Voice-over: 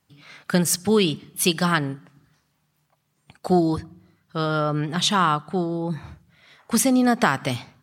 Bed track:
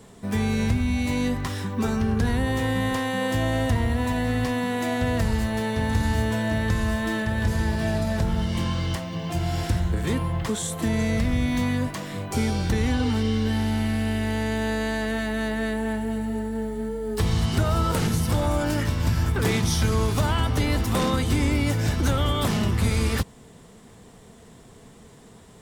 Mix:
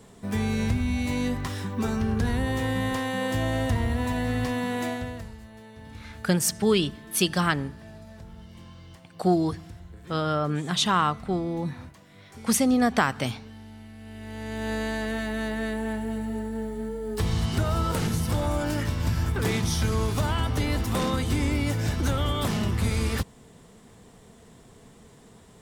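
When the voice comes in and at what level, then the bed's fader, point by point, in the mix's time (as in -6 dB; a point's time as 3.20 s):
5.75 s, -3.0 dB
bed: 4.85 s -2.5 dB
5.37 s -20.5 dB
13.95 s -20.5 dB
14.73 s -3 dB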